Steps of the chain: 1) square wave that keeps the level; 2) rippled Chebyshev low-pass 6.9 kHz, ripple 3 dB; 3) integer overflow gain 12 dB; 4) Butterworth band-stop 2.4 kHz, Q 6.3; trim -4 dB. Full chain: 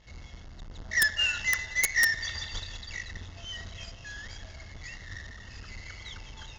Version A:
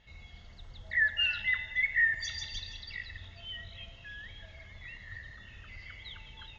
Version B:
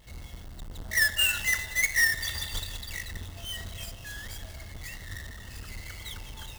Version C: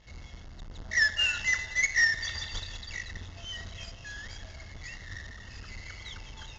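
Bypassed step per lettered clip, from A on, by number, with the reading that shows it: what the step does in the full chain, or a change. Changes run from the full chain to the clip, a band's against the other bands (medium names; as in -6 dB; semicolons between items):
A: 1, distortion -6 dB; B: 2, 2 kHz band -1.5 dB; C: 3, distortion -9 dB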